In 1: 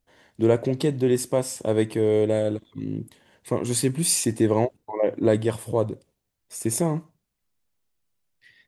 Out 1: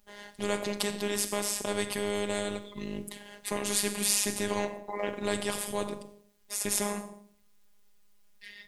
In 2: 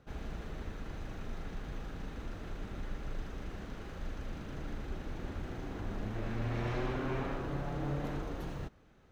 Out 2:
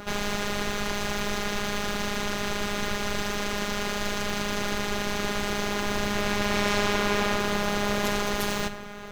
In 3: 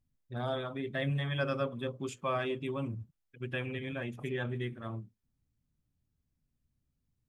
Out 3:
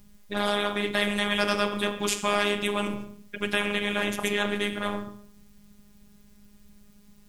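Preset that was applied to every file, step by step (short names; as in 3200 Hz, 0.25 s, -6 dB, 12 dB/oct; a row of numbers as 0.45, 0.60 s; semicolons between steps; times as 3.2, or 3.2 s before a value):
notches 50/100/150/200/250 Hz; Schroeder reverb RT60 0.52 s, combs from 30 ms, DRR 14 dB; robotiser 205 Hz; spectral compressor 2:1; normalise peaks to -6 dBFS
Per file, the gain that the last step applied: -1.0, +16.5, +15.0 dB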